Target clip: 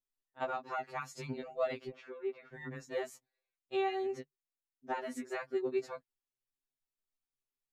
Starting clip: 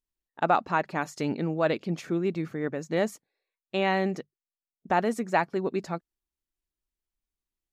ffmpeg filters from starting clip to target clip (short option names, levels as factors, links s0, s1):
-filter_complex "[0:a]acompressor=threshold=0.0631:ratio=6,asettb=1/sr,asplit=3[s0][s1][s2];[s0]atrim=end=1.894[s3];[s1]atrim=start=1.89:end=2.54,asetpts=PTS-STARTPTS,afade=t=in:d=0.004:c=qsin,afade=t=out:st=0.646:d=0.004:c=qsin,highpass=450,lowpass=2200[s4];[s2]atrim=start=2.536[s5];[s3][s4]acrossfade=d=0.004:c1=hsin:c2=qsin[s6];[s6][s5]acrossfade=d=0.004:c1=qsin:c2=hsin,afftfilt=real='re*2.45*eq(mod(b,6),0)':imag='im*2.45*eq(mod(b,6),0)':win_size=2048:overlap=0.75,volume=0.596"